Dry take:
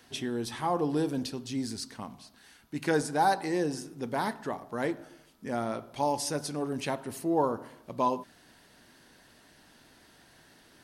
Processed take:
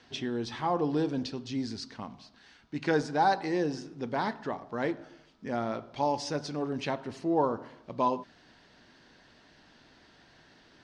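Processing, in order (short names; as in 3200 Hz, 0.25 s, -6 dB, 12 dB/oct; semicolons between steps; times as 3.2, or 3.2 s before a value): LPF 5600 Hz 24 dB/oct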